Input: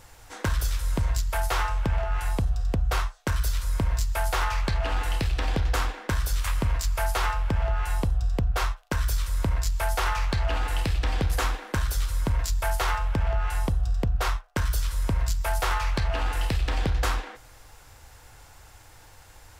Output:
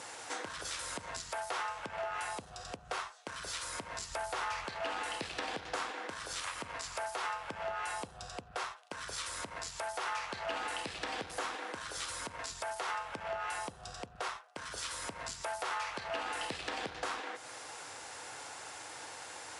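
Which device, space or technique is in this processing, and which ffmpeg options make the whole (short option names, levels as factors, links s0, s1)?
podcast mastering chain: -filter_complex "[0:a]highpass=290,asettb=1/sr,asplit=3[s0][s1][s2];[s0]atrim=end=4.114[s3];[s1]atrim=start=4.11:end=4.65,asetpts=PTS-STARTPTS,afade=t=in:d=0.004:c=qsin,afade=t=out:st=0.536:d=0.004:c=qsin,lowshelf=f=140:g=11.5[s4];[s2]atrim=start=4.646[s5];[s3][s4]acrossfade=d=0.004:c1=hsin:c2=qsin[s6];[s6][s5]acrossfade=d=0.004:c1=qsin:c2=hsin,highpass=f=75:p=1,deesser=0.7,acompressor=threshold=0.00501:ratio=3,alimiter=level_in=2.66:limit=0.0631:level=0:latency=1:release=165,volume=0.376,volume=2.51" -ar 24000 -c:a libmp3lame -b:a 96k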